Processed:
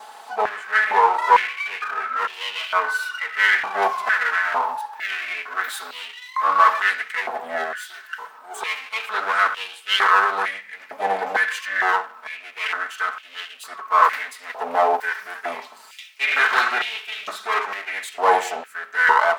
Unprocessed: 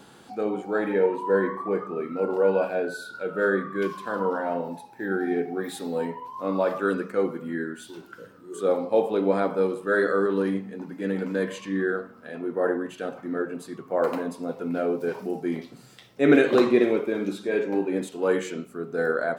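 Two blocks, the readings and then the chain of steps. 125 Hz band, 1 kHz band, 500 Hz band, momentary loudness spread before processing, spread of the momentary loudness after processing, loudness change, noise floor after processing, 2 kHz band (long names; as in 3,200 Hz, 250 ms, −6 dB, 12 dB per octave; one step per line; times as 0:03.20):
below −20 dB, +14.0 dB, −6.0 dB, 11 LU, 17 LU, +5.0 dB, −45 dBFS, +12.5 dB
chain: lower of the sound and its delayed copy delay 4.6 ms
boost into a limiter +12.5 dB
high-pass on a step sequencer 2.2 Hz 790–2,900 Hz
level −5 dB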